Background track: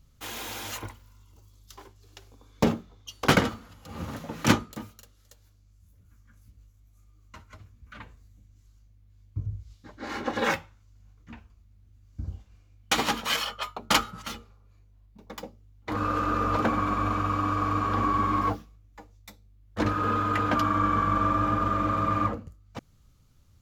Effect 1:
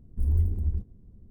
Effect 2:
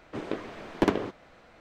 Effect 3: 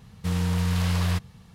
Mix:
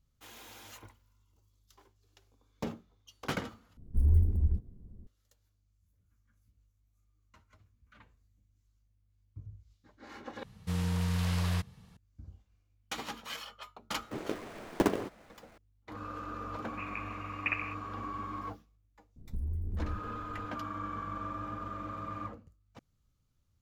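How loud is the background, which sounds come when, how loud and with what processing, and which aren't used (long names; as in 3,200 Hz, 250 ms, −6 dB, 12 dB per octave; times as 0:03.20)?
background track −14.5 dB
0:03.77: overwrite with 1 −0.5 dB
0:10.43: overwrite with 3 −6.5 dB
0:13.98: mix in 2 −3.5 dB + gap after every zero crossing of 0.1 ms
0:16.64: mix in 2 −10 dB + voice inversion scrambler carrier 2,800 Hz
0:19.16: mix in 1 −0.5 dB + downward compressor 12 to 1, threshold −30 dBFS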